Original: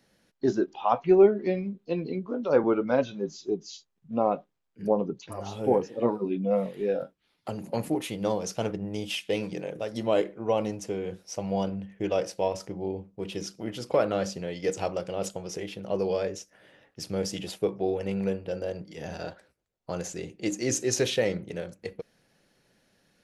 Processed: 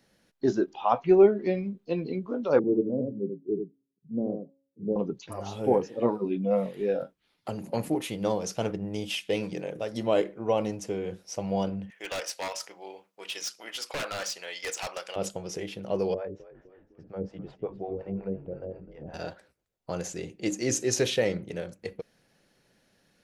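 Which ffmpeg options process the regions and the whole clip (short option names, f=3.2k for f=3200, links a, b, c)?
-filter_complex "[0:a]asettb=1/sr,asplit=3[a][b][c];[a]atrim=end=2.594[d];[b]atrim=start=2.59:end=4.96,asetpts=PTS-STARTPTS,afade=t=in:d=0.004:c=qsin,afade=t=out:st=2.366:d=0.004:c=qsin,asuperpass=centerf=220:order=8:qfactor=0.62,bandreject=f=273.8:t=h:w=4,bandreject=f=547.6:t=h:w=4,bandreject=f=821.4:t=h:w=4,bandreject=f=1.0952k:t=h:w=4,bandreject=f=1.369k:t=h:w=4,bandreject=f=1.6428k:t=h:w=4,bandreject=f=1.9166k:t=h:w=4,bandreject=f=2.1904k:t=h:w=4,bandreject=f=2.4642k:t=h:w=4,bandreject=f=2.738k:t=h:w=4,bandreject=f=3.0118k:t=h:w=4,bandreject=f=3.2856k:t=h:w=4,bandreject=f=3.5594k:t=h:w=4,bandreject=f=3.8332k:t=h:w=4,bandreject=f=4.107k:t=h:w=4,bandreject=f=4.3808k:t=h:w=4,bandreject=f=4.6546k:t=h:w=4,bandreject=f=4.9284k:t=h:w=4,bandreject=f=5.2022k:t=h:w=4,bandreject=f=5.476k:t=h:w=4,bandreject=f=5.7498k:t=h:w=4,bandreject=f=6.0236k:t=h:w=4,bandreject=f=6.2974k:t=h:w=4,bandreject=f=6.5712k:t=h:w=4,bandreject=f=6.845k:t=h:w=4,bandreject=f=7.1188k:t=h:w=4,bandreject=f=7.3926k:t=h:w=4,aecho=1:1:83:0.531,atrim=end_sample=104517[e];[c]atrim=start=4.956[f];[d][e]acrossfade=d=0.004:c1=hsin:c2=qsin[g];[g][f]acrossfade=d=0.004:c1=qsin:c2=hsin,asettb=1/sr,asplit=3[h][i][j];[h]atrim=end=11.904[k];[i]atrim=start=11.9:end=15.16,asetpts=PTS-STARTPTS,afade=t=in:d=0.004:c=qsin,afade=t=out:st=3.256:d=0.004:c=qsin,highpass=1.2k,acontrast=74,aeval=exprs='0.0473*(abs(mod(val(0)/0.0473+3,4)-2)-1)':c=same[l];[j]atrim=start=15.156[m];[k][l]acrossfade=d=0.004:c1=hsin:c2=qsin[n];[n][m]acrossfade=d=0.004:c1=qsin:c2=hsin,asettb=1/sr,asplit=3[o][p][q];[o]atrim=end=16.144[r];[p]atrim=start=16.14:end=19.14,asetpts=PTS-STARTPTS,afade=t=in:d=0.004:c=qsin,afade=t=out:st=2.996:d=0.004:c=qsin,lowpass=1.2k,acrossover=split=530[s][t];[s]aeval=exprs='val(0)*(1-1/2+1/2*cos(2*PI*5.5*n/s))':c=same[u];[t]aeval=exprs='val(0)*(1-1/2-1/2*cos(2*PI*5.5*n/s))':c=same[v];[u][v]amix=inputs=2:normalize=0,asplit=6[w][x][y][z][aa][ab];[x]adelay=253,afreqshift=-51,volume=-15.5dB[ac];[y]adelay=506,afreqshift=-102,volume=-21dB[ad];[z]adelay=759,afreqshift=-153,volume=-26.5dB[ae];[aa]adelay=1012,afreqshift=-204,volume=-32dB[af];[ab]adelay=1265,afreqshift=-255,volume=-37.6dB[ag];[w][ac][ad][ae][af][ag]amix=inputs=6:normalize=0,atrim=end_sample=132300[ah];[q]atrim=start=19.136[ai];[r][ah]acrossfade=d=0.004:c1=hsin:c2=qsin[aj];[aj][ai]acrossfade=d=0.004:c1=qsin:c2=hsin"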